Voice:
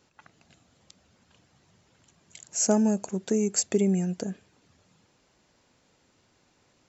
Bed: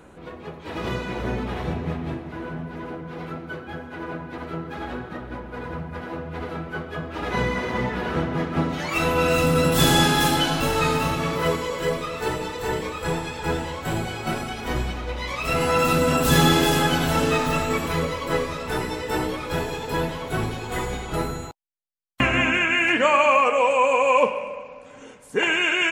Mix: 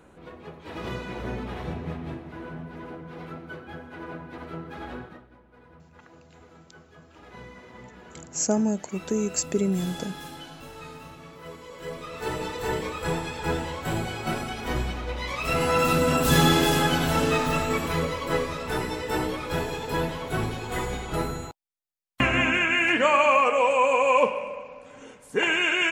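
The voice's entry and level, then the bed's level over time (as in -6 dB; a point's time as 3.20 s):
5.80 s, -1.0 dB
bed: 5.03 s -5.5 dB
5.31 s -20.5 dB
11.42 s -20.5 dB
12.42 s -2 dB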